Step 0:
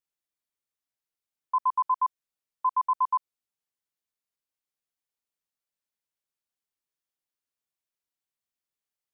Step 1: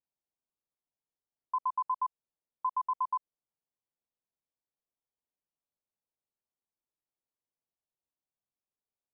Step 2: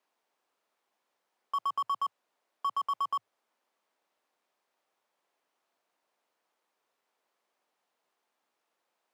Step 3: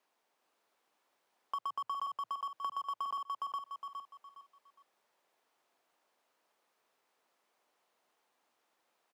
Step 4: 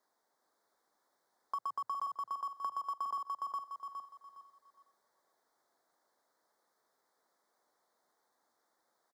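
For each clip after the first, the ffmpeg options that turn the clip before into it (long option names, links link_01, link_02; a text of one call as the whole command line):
ffmpeg -i in.wav -af "lowpass=frequency=1000:width=0.5412,lowpass=frequency=1000:width=1.3066,acompressor=threshold=-28dB:ratio=6" out.wav
ffmpeg -i in.wav -filter_complex "[0:a]asplit=2[link_01][link_02];[link_02]highpass=frequency=720:poles=1,volume=31dB,asoftclip=type=tanh:threshold=-22dB[link_03];[link_01][link_03]amix=inputs=2:normalize=0,lowpass=frequency=1100:poles=1,volume=-6dB,afreqshift=100" out.wav
ffmpeg -i in.wav -af "aecho=1:1:412|824|1236|1648:0.631|0.189|0.0568|0.017,acompressor=threshold=-37dB:ratio=6,volume=1.5dB" out.wav
ffmpeg -i in.wav -af "asuperstop=centerf=2700:order=4:qfactor=1.5,aecho=1:1:501:0.106" out.wav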